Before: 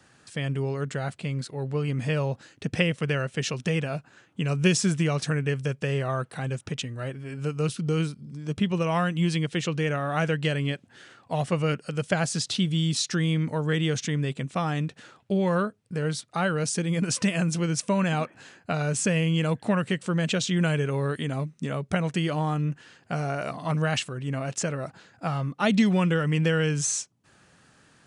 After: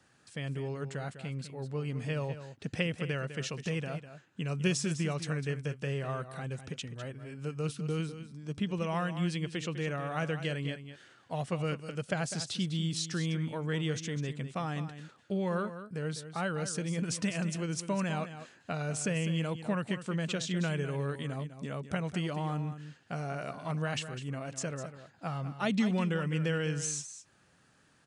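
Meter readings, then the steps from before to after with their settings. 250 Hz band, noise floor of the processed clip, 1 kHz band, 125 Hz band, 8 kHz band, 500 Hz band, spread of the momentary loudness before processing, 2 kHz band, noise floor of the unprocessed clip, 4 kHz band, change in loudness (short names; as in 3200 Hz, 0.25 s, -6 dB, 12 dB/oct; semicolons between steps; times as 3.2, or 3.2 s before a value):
-7.5 dB, -65 dBFS, -7.5 dB, -7.5 dB, -7.5 dB, -7.5 dB, 9 LU, -7.5 dB, -60 dBFS, -7.5 dB, -7.5 dB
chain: echo 0.202 s -11.5 dB; gain -8 dB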